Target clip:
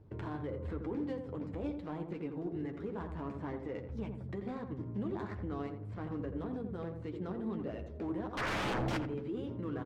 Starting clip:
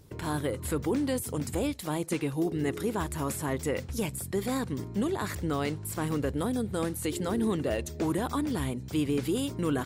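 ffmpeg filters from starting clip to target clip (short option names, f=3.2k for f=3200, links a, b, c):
-filter_complex "[0:a]acrossover=split=770|5600[a][b][c];[c]acompressor=threshold=-51dB:ratio=6[d];[a][b][d]amix=inputs=3:normalize=0,alimiter=level_in=4dB:limit=-24dB:level=0:latency=1:release=322,volume=-4dB,asettb=1/sr,asplit=3[e][f][g];[e]atrim=end=8.374[h];[f]atrim=start=8.37:end=8.97,asetpts=PTS-STARTPTS,afade=t=in:d=0.004:c=qsin,afade=t=out:st=0.596:d=0.004:c=qsin,aeval=exprs='0.0422*sin(PI/2*7.94*val(0)/0.0422)':c=same[i];[g]atrim=start=8.966[j];[h][i]acrossfade=d=0.004:c1=hsin:c2=qsin[k];[k][j]acrossfade=d=0.004:c1=qsin:c2=hsin,adynamicsmooth=sensitivity=4:basefreq=1.4k,flanger=delay=9.1:depth=1.7:regen=-36:speed=0.22:shape=triangular,asplit=2[l][m];[m]adelay=85,lowpass=f=1k:p=1,volume=-5dB,asplit=2[n][o];[o]adelay=85,lowpass=f=1k:p=1,volume=0.47,asplit=2[p][q];[q]adelay=85,lowpass=f=1k:p=1,volume=0.47,asplit=2[r][s];[s]adelay=85,lowpass=f=1k:p=1,volume=0.47,asplit=2[t][u];[u]adelay=85,lowpass=f=1k:p=1,volume=0.47,asplit=2[v][w];[w]adelay=85,lowpass=f=1k:p=1,volume=0.47[x];[n][p][r][t][v][x]amix=inputs=6:normalize=0[y];[l][y]amix=inputs=2:normalize=0,volume=1dB"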